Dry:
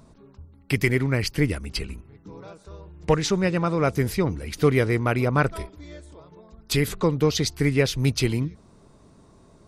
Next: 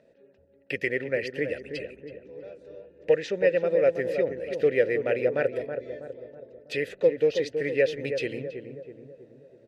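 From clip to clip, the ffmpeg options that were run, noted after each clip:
-filter_complex "[0:a]asplit=3[a][b][c];[a]bandpass=f=530:t=q:w=8,volume=0dB[d];[b]bandpass=f=1.84k:t=q:w=8,volume=-6dB[e];[c]bandpass=f=2.48k:t=q:w=8,volume=-9dB[f];[d][e][f]amix=inputs=3:normalize=0,asplit=2[g][h];[h]adelay=324,lowpass=f=980:p=1,volume=-6.5dB,asplit=2[i][j];[j]adelay=324,lowpass=f=980:p=1,volume=0.55,asplit=2[k][l];[l]adelay=324,lowpass=f=980:p=1,volume=0.55,asplit=2[m][n];[n]adelay=324,lowpass=f=980:p=1,volume=0.55,asplit=2[o][p];[p]adelay=324,lowpass=f=980:p=1,volume=0.55,asplit=2[q][r];[r]adelay=324,lowpass=f=980:p=1,volume=0.55,asplit=2[s][t];[t]adelay=324,lowpass=f=980:p=1,volume=0.55[u];[g][i][k][m][o][q][s][u]amix=inputs=8:normalize=0,volume=8dB"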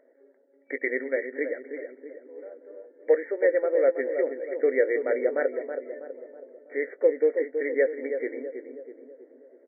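-filter_complex "[0:a]afftfilt=real='re*between(b*sr/4096,240,2300)':imag='im*between(b*sr/4096,240,2300)':win_size=4096:overlap=0.75,asplit=2[a][b];[b]adelay=19,volume=-12dB[c];[a][c]amix=inputs=2:normalize=0"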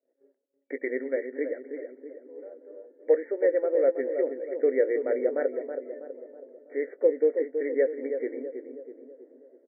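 -af "agate=range=-33dB:threshold=-51dB:ratio=3:detection=peak,tiltshelf=f=900:g=6,volume=-4dB"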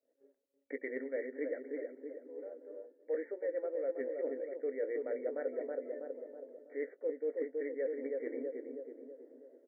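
-af "areverse,acompressor=threshold=-31dB:ratio=6,areverse,bandreject=f=370:w=12,volume=-2.5dB"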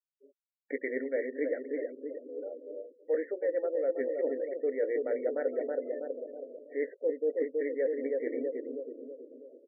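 -af "afftfilt=real='re*gte(hypot(re,im),0.002)':imag='im*gte(hypot(re,im),0.002)':win_size=1024:overlap=0.75,volume=6dB"

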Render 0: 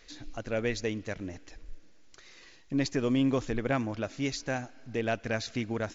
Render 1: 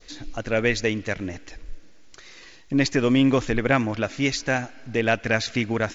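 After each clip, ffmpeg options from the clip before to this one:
-af "adynamicequalizer=threshold=0.00447:dfrequency=2100:dqfactor=0.93:tfrequency=2100:tqfactor=0.93:attack=5:release=100:ratio=0.375:range=2.5:mode=boostabove:tftype=bell,volume=7.5dB"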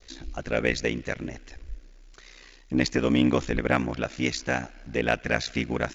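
-af "aeval=exprs='0.531*(cos(1*acos(clip(val(0)/0.531,-1,1)))-cos(1*PI/2))+0.00841*(cos(7*acos(clip(val(0)/0.531,-1,1)))-cos(7*PI/2))':c=same,aeval=exprs='val(0)*sin(2*PI*31*n/s)':c=same"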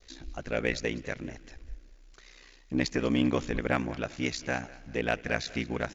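-af "aecho=1:1:198|396|594:0.1|0.039|0.0152,volume=-4.5dB"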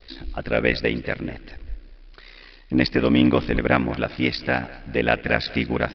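-af "aresample=11025,aresample=44100,volume=9dB"

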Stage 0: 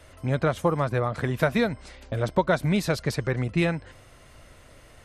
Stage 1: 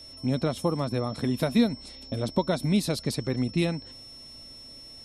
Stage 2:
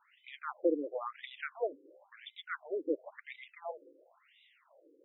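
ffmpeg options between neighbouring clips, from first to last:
-af "equalizer=f=250:t=o:w=0.67:g=11,equalizer=f=1.6k:t=o:w=0.67:g=-8,equalizer=f=4k:t=o:w=0.67:g=7,equalizer=f=10k:t=o:w=0.67:g=11,aeval=exprs='val(0)+0.0112*sin(2*PI*5400*n/s)':c=same,volume=-5dB"
-af "afftfilt=real='re*between(b*sr/1024,370*pow(2800/370,0.5+0.5*sin(2*PI*0.96*pts/sr))/1.41,370*pow(2800/370,0.5+0.5*sin(2*PI*0.96*pts/sr))*1.41)':imag='im*between(b*sr/1024,370*pow(2800/370,0.5+0.5*sin(2*PI*0.96*pts/sr))/1.41,370*pow(2800/370,0.5+0.5*sin(2*PI*0.96*pts/sr))*1.41)':win_size=1024:overlap=0.75"

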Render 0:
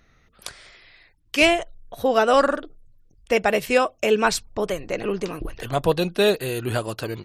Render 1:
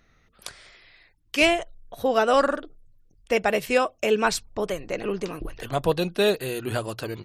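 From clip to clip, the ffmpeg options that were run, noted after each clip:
-af "bandreject=f=60:t=h:w=6,bandreject=f=120:t=h:w=6,volume=-2.5dB"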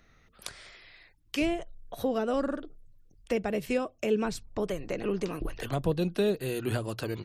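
-filter_complex "[0:a]acrossover=split=380[a][b];[b]acompressor=threshold=-34dB:ratio=6[c];[a][c]amix=inputs=2:normalize=0"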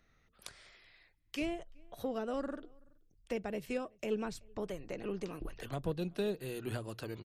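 -filter_complex "[0:a]asplit=2[a][b];[b]adelay=379,volume=-28dB,highshelf=f=4k:g=-8.53[c];[a][c]amix=inputs=2:normalize=0,aeval=exprs='0.178*(cos(1*acos(clip(val(0)/0.178,-1,1)))-cos(1*PI/2))+0.0112*(cos(3*acos(clip(val(0)/0.178,-1,1)))-cos(3*PI/2))+0.00178*(cos(8*acos(clip(val(0)/0.178,-1,1)))-cos(8*PI/2))':c=same,volume=-7dB"

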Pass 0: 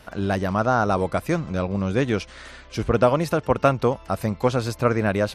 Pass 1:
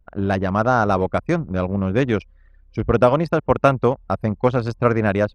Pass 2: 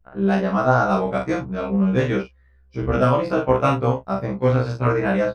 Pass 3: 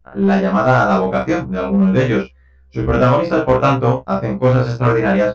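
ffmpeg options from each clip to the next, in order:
-af "anlmdn=100,highshelf=f=7.7k:g=-4,volume=3dB"
-filter_complex "[0:a]asplit=2[a][b];[b]aecho=0:1:41|74:0.631|0.158[c];[a][c]amix=inputs=2:normalize=0,afftfilt=real='re*1.73*eq(mod(b,3),0)':imag='im*1.73*eq(mod(b,3),0)':win_size=2048:overlap=0.75"
-filter_complex "[0:a]asplit=2[a][b];[b]aeval=exprs='0.188*(abs(mod(val(0)/0.188+3,4)-2)-1)':c=same,volume=-8.5dB[c];[a][c]amix=inputs=2:normalize=0,aresample=16000,aresample=44100,volume=3dB"

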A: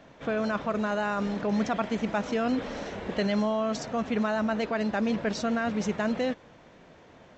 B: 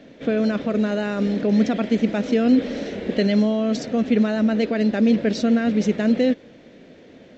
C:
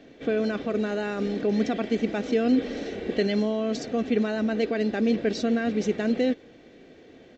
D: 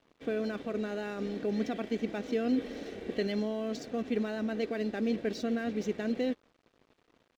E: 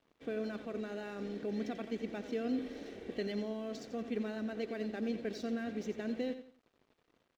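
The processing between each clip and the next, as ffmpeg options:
-af "equalizer=f=250:t=o:w=1:g=11,equalizer=f=500:t=o:w=1:g=8,equalizer=f=1k:t=o:w=1:g=-10,equalizer=f=2k:t=o:w=1:g=5,equalizer=f=4k:t=o:w=1:g=6"
-af "aecho=1:1:2.6:0.37,volume=-4dB"
-af "aeval=exprs='sgn(val(0))*max(abs(val(0))-0.00398,0)':c=same,volume=-7dB"
-af "aecho=1:1:88|176|264:0.282|0.0846|0.0254,volume=-6dB"

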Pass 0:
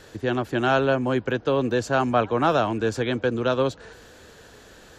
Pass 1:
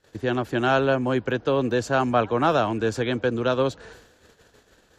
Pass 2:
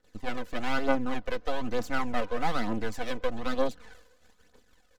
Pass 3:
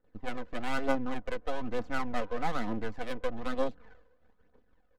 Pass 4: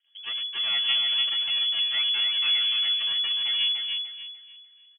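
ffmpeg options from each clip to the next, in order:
-af "agate=range=-22dB:threshold=-46dB:ratio=16:detection=peak"
-af "aeval=exprs='max(val(0),0)':c=same,aecho=1:1:4:0.59,aphaser=in_gain=1:out_gain=1:delay=2.1:decay=0.5:speed=1.1:type=triangular,volume=-6.5dB"
-af "adynamicsmooth=sensitivity=6.5:basefreq=1.5k,volume=-3dB"
-filter_complex "[0:a]asplit=2[a][b];[b]aecho=0:1:295|590|885|1180:0.596|0.179|0.0536|0.0161[c];[a][c]amix=inputs=2:normalize=0,lowpass=f=2.9k:t=q:w=0.5098,lowpass=f=2.9k:t=q:w=0.6013,lowpass=f=2.9k:t=q:w=0.9,lowpass=f=2.9k:t=q:w=2.563,afreqshift=-3400"

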